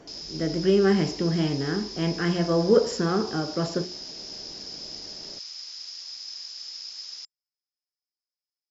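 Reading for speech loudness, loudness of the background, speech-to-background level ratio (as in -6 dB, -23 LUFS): -25.0 LUFS, -36.0 LUFS, 11.0 dB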